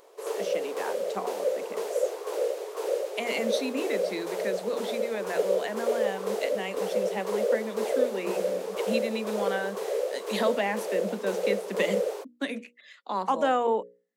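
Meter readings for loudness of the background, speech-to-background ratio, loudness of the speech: -30.5 LUFS, -2.0 dB, -32.5 LUFS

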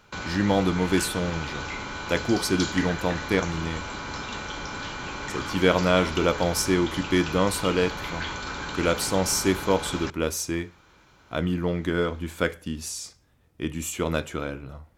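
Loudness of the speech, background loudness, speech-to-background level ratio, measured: -26.0 LUFS, -33.0 LUFS, 7.0 dB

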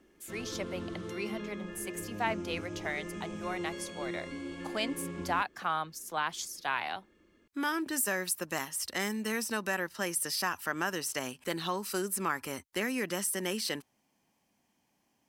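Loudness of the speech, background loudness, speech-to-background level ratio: -34.5 LUFS, -41.0 LUFS, 6.5 dB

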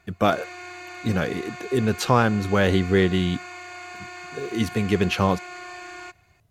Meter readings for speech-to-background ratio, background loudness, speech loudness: 14.5 dB, -37.5 LUFS, -23.0 LUFS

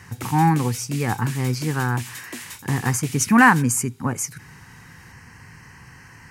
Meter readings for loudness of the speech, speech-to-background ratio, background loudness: -21.0 LUFS, 15.0 dB, -36.0 LUFS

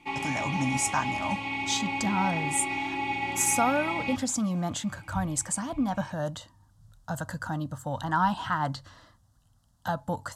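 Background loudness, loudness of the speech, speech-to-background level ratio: -31.0 LUFS, -30.0 LUFS, 1.0 dB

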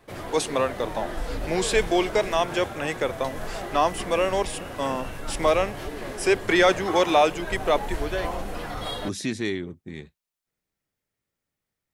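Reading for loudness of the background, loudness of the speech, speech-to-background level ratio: -34.5 LUFS, -25.0 LUFS, 9.5 dB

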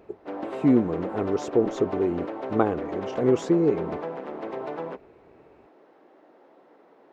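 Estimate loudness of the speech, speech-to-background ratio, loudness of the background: -25.0 LUFS, 9.5 dB, -34.5 LUFS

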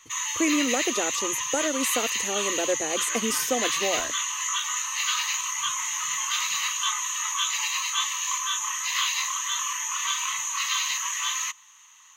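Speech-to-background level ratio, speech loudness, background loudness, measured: -3.0 dB, -28.5 LUFS, -25.5 LUFS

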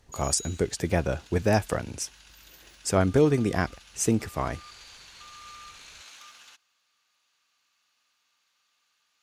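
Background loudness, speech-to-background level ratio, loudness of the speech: -46.5 LUFS, 19.5 dB, -27.0 LUFS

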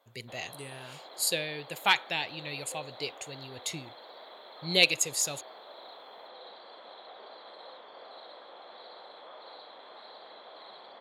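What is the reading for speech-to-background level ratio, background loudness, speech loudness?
19.0 dB, -48.5 LUFS, -29.5 LUFS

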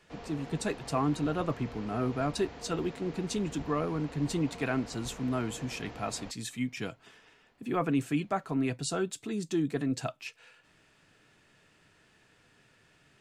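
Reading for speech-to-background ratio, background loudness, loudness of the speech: 13.0 dB, -46.0 LUFS, -33.0 LUFS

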